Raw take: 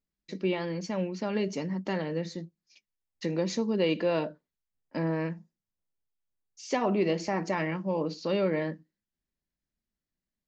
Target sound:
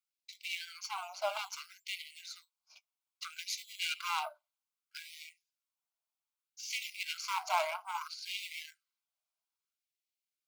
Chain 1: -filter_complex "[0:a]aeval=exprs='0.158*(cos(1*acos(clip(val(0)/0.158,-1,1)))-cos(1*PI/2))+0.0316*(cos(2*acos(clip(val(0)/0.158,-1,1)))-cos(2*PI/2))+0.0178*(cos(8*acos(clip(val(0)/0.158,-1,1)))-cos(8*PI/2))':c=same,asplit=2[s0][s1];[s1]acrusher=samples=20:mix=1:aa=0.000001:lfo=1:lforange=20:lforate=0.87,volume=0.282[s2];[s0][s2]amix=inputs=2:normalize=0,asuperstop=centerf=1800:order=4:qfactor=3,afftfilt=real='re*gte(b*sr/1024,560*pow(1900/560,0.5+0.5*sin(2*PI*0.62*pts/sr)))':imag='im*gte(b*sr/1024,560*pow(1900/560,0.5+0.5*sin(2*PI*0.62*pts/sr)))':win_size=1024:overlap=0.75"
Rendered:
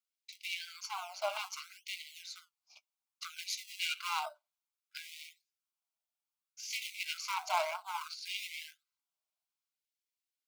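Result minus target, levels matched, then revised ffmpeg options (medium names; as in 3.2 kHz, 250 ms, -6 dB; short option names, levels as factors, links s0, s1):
decimation with a swept rate: distortion +7 dB
-filter_complex "[0:a]aeval=exprs='0.158*(cos(1*acos(clip(val(0)/0.158,-1,1)))-cos(1*PI/2))+0.0316*(cos(2*acos(clip(val(0)/0.158,-1,1)))-cos(2*PI/2))+0.0178*(cos(8*acos(clip(val(0)/0.158,-1,1)))-cos(8*PI/2))':c=same,asplit=2[s0][s1];[s1]acrusher=samples=8:mix=1:aa=0.000001:lfo=1:lforange=8:lforate=0.87,volume=0.282[s2];[s0][s2]amix=inputs=2:normalize=0,asuperstop=centerf=1800:order=4:qfactor=3,afftfilt=real='re*gte(b*sr/1024,560*pow(1900/560,0.5+0.5*sin(2*PI*0.62*pts/sr)))':imag='im*gte(b*sr/1024,560*pow(1900/560,0.5+0.5*sin(2*PI*0.62*pts/sr)))':win_size=1024:overlap=0.75"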